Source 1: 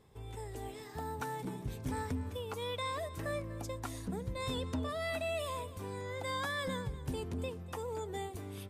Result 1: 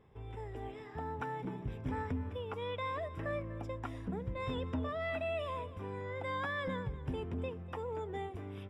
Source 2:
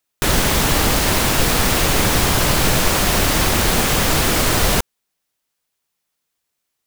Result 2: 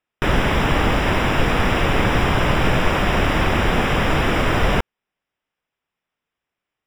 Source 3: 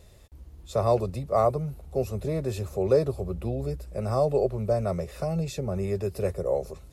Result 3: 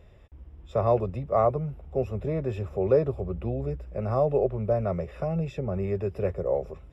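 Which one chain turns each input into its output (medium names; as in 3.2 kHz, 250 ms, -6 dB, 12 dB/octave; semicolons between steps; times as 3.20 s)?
Savitzky-Golay filter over 25 samples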